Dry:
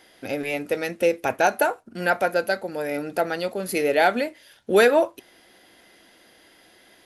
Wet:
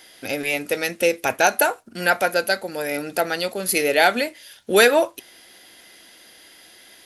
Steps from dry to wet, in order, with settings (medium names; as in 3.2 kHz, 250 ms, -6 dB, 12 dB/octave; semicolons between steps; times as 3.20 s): treble shelf 2.1 kHz +11 dB